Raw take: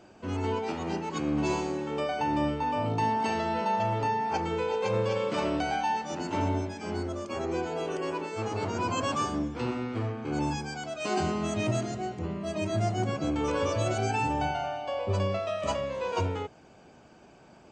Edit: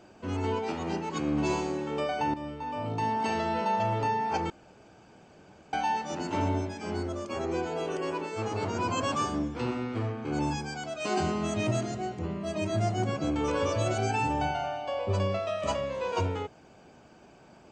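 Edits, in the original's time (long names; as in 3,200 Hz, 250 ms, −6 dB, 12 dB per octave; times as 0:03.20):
0:02.34–0:03.36: fade in, from −12.5 dB
0:04.50–0:05.73: fill with room tone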